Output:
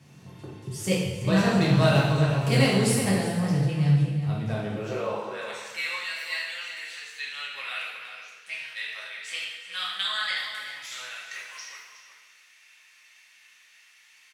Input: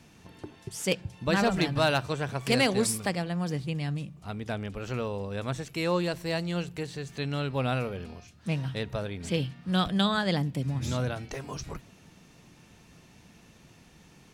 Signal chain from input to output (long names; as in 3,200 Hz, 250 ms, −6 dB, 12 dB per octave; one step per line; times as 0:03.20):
high-pass filter sweep 120 Hz → 2,000 Hz, 0:04.45–0:05.45
slap from a distant wall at 63 metres, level −8 dB
coupled-rooms reverb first 0.98 s, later 2.8 s, DRR −6 dB
level −5.5 dB